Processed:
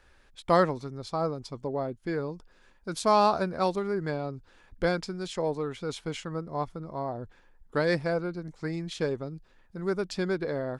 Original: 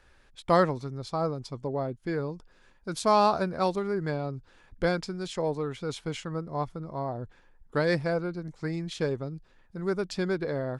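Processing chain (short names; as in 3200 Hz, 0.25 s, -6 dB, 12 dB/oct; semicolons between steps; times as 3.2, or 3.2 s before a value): bell 130 Hz -4 dB 0.54 oct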